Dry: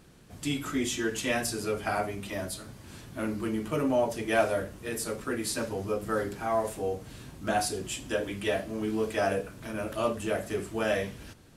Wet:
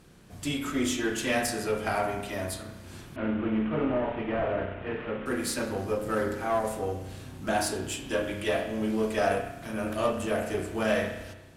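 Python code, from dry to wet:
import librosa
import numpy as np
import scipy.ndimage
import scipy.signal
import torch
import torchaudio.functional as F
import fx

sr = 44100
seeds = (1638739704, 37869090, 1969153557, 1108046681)

y = fx.delta_mod(x, sr, bps=16000, step_db=-39.5, at=(3.16, 5.26))
y = fx.rev_spring(y, sr, rt60_s=1.0, pass_ms=(32,), chirp_ms=40, drr_db=4.0)
y = fx.cheby_harmonics(y, sr, harmonics=(6,), levels_db=(-25,), full_scale_db=-14.0)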